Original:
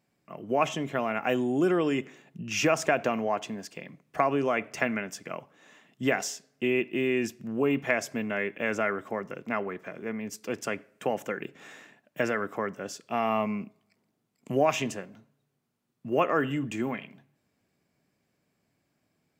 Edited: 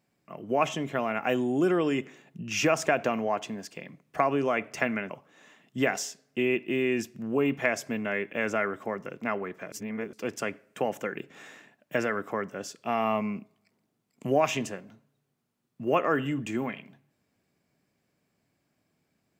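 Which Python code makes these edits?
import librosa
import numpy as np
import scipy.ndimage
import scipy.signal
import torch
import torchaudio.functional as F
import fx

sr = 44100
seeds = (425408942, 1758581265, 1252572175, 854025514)

y = fx.edit(x, sr, fx.cut(start_s=5.1, length_s=0.25),
    fx.reverse_span(start_s=9.97, length_s=0.41), tone=tone)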